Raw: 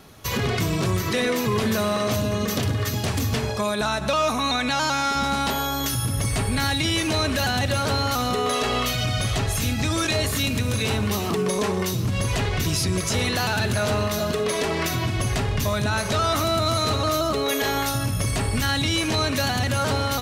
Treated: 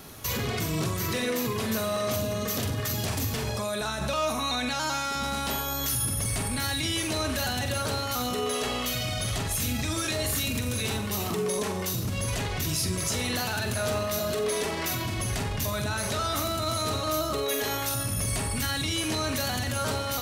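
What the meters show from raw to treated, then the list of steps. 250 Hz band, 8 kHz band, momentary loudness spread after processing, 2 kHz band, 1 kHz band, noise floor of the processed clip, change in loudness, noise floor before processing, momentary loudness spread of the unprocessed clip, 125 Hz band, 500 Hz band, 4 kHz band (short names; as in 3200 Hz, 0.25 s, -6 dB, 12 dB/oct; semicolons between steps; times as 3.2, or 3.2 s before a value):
-6.5 dB, -1.0 dB, 2 LU, -6.0 dB, -6.5 dB, -31 dBFS, -5.0 dB, -26 dBFS, 3 LU, -7.0 dB, -5.5 dB, -5.0 dB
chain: limiter -24 dBFS, peak gain reduction 10 dB; high shelf 7800 Hz +10 dB; flutter echo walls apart 7.7 m, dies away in 0.33 s; gain +1 dB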